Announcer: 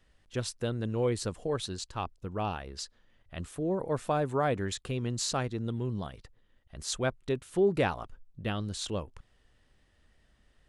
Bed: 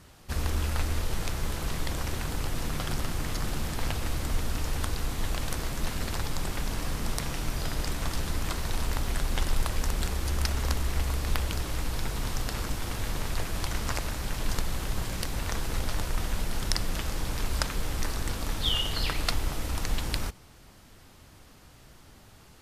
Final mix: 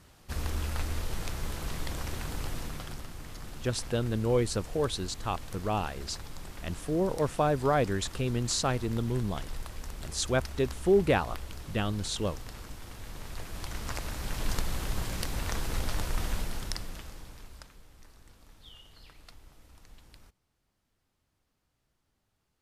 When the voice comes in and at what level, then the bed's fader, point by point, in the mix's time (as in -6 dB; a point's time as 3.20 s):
3.30 s, +2.5 dB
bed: 2.51 s -4 dB
3.08 s -12 dB
13.02 s -12 dB
14.43 s -1.5 dB
16.33 s -1.5 dB
17.87 s -25 dB